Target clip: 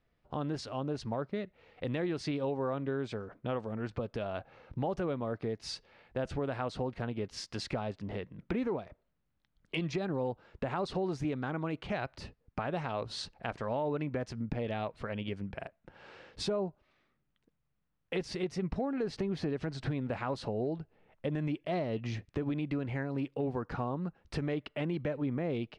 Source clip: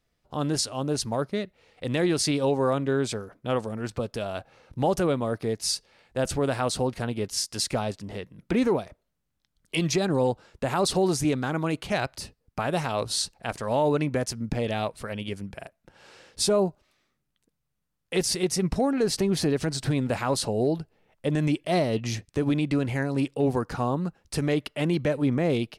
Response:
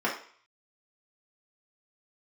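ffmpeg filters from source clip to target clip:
-af "lowpass=2800,acompressor=threshold=-35dB:ratio=2.5"

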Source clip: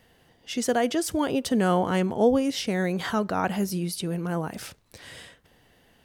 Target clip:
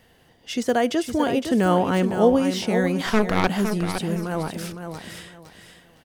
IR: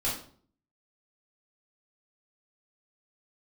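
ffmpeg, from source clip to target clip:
-filter_complex "[0:a]deesser=0.7,asettb=1/sr,asplit=3[link_01][link_02][link_03];[link_01]atrim=end=3.064[link_04];[link_02]atrim=start=3.06:end=3.47,asetpts=PTS-STARTPTS,afade=type=in:duration=0.004:curve=qsin,afade=type=out:start_time=0.406:duration=0.004:curve=qsin,aeval=exprs='0.251*(cos(1*acos(clip(val(0)/0.251,-1,1)))-cos(1*PI/2))+0.1*(cos(4*acos(clip(val(0)/0.251,-1,1)))-cos(4*PI/2))':channel_layout=same[link_05];[link_03]atrim=start=3.466[link_06];[link_04][link_05]acrossfade=duration=0.004:curve1=hsin:curve2=qsin[link_07];[link_07][link_06]acrossfade=duration=0.004:curve1=qsin:curve2=hsin,asplit=2[link_08][link_09];[link_09]aecho=0:1:511|1022|1533:0.398|0.0995|0.0249[link_10];[link_08][link_10]amix=inputs=2:normalize=0,volume=3dB"

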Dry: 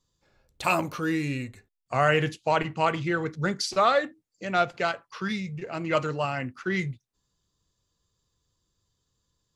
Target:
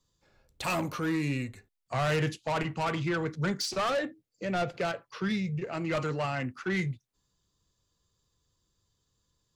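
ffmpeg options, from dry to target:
ffmpeg -i in.wav -filter_complex "[0:a]asettb=1/sr,asplit=3[link_01][link_02][link_03];[link_01]atrim=end=3.894[link_04];[link_02]atrim=start=3.89:end=5.64,asetpts=PTS-STARTPTS,afade=type=in:duration=0.004:curve=qsin,afade=type=out:start_time=1.746:duration=0.004:curve=qsin,equalizer=frequency=125:width_type=o:width=1:gain=4,equalizer=frequency=500:width_type=o:width=1:gain=5,equalizer=frequency=1000:width_type=o:width=1:gain=-5,equalizer=frequency=8000:width_type=o:width=1:gain=-4[link_05];[link_03]atrim=start=5.636[link_06];[link_04][link_05]acrossfade=duration=0.004:curve1=hsin:curve2=qsin[link_07];[link_07][link_06]acrossfade=duration=0.004:curve1=qsin:curve2=hsin,acrossover=split=190[link_08][link_09];[link_09]asoftclip=type=tanh:threshold=-26dB[link_10];[link_08][link_10]amix=inputs=2:normalize=0" out.wav

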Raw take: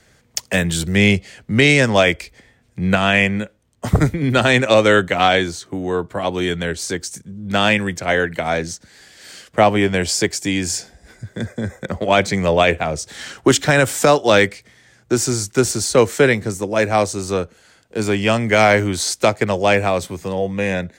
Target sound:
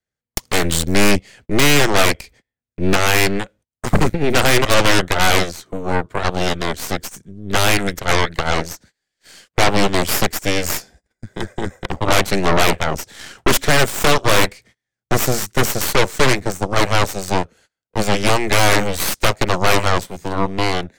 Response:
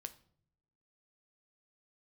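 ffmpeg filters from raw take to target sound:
-af "aeval=exprs='0.841*(cos(1*acos(clip(val(0)/0.841,-1,1)))-cos(1*PI/2))+0.0188*(cos(5*acos(clip(val(0)/0.841,-1,1)))-cos(5*PI/2))+0.422*(cos(8*acos(clip(val(0)/0.841,-1,1)))-cos(8*PI/2))':channel_layout=same,agate=range=-29dB:threshold=-39dB:ratio=16:detection=peak,volume=-5.5dB"

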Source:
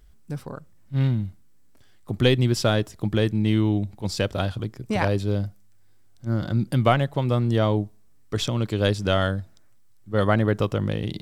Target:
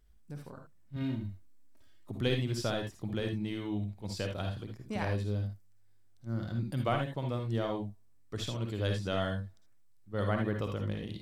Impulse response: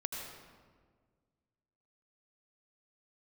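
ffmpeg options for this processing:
-filter_complex "[0:a]asettb=1/sr,asplit=3[link_01][link_02][link_03];[link_01]atrim=end=0.964[link_04];[link_02]atrim=start=0.96:end=2.11,asetpts=PTS-STARTPTS,afade=type=in:duration=0.004:curve=qsin,afade=type=out:start_time=1.146:duration=0.004:curve=qsin,aecho=1:1:3.2:0.74,atrim=end_sample=50715[link_05];[link_03]atrim=start=2.106[link_06];[link_04][link_05]acrossfade=duration=0.004:curve1=hsin:curve2=qsin[link_07];[link_07][link_06]acrossfade=duration=0.004:curve1=qsin:curve2=hsin[link_08];[1:a]atrim=start_sample=2205,atrim=end_sample=6174,asetrate=70560,aresample=44100[link_09];[link_08][link_09]afir=irnorm=-1:irlink=0,volume=-6.5dB"

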